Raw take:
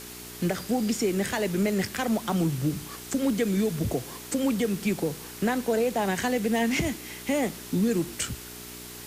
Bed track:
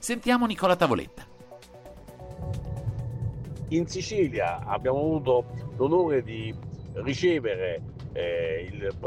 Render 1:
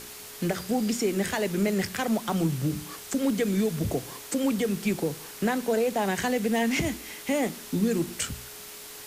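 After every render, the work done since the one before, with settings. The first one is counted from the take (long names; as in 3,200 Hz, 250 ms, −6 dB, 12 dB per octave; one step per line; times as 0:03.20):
hum removal 60 Hz, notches 6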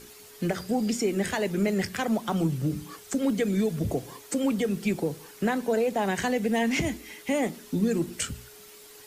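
broadband denoise 9 dB, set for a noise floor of −43 dBFS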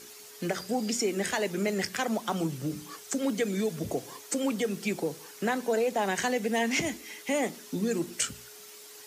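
high-pass filter 330 Hz 6 dB per octave
parametric band 6,000 Hz +4 dB 0.72 octaves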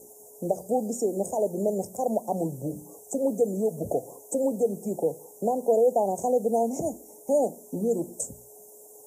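inverse Chebyshev band-stop filter 1,200–4,500 Hz, stop band 40 dB
flat-topped bell 780 Hz +8.5 dB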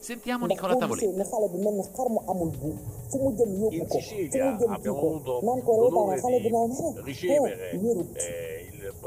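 mix in bed track −7 dB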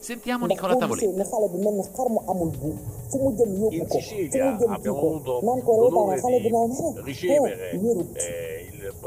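level +3 dB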